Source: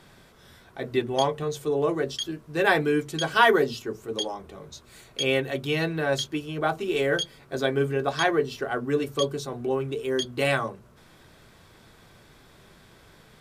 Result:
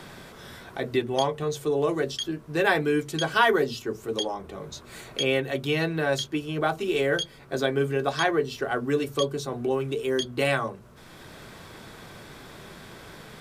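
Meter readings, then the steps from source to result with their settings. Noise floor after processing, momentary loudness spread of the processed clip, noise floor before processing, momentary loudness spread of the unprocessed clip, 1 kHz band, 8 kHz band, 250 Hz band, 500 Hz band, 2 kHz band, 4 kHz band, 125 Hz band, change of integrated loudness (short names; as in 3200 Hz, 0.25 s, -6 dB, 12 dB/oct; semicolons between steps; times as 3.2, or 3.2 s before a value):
-48 dBFS, 20 LU, -54 dBFS, 11 LU, -1.0 dB, -0.5 dB, +0.5 dB, 0.0 dB, -0.5 dB, -0.5 dB, +0.5 dB, -0.5 dB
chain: three-band squash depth 40%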